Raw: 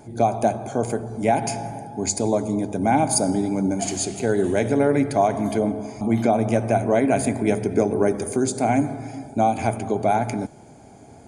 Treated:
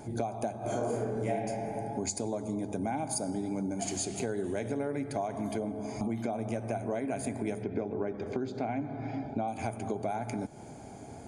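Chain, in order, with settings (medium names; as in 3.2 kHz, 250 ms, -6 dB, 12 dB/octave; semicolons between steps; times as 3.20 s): 0.59–1.31 s: reverb throw, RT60 1.2 s, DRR -9.5 dB; 7.63–9.48 s: low-pass 4 kHz 24 dB/octave; compression 6:1, threshold -31 dBFS, peak gain reduction 23 dB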